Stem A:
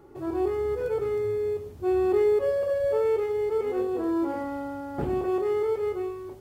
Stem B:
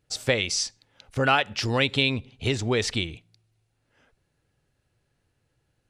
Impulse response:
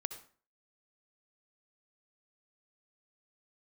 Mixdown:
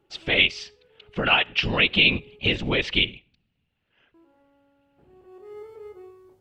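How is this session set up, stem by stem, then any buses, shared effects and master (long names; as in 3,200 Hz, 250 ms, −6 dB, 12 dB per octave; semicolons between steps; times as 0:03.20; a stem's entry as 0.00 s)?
−6.0 dB, 0.00 s, muted 0:02.68–0:04.14, send −20.5 dB, hum removal 48.92 Hz, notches 27; automatic ducking −23 dB, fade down 0.75 s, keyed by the second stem
+2.5 dB, 0.00 s, send −12.5 dB, random phases in short frames; brickwall limiter −17.5 dBFS, peak gain reduction 10 dB; low-pass with resonance 2,900 Hz, resonance Q 3.4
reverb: on, RT60 0.45 s, pre-delay 57 ms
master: expander for the loud parts 1.5 to 1, over −32 dBFS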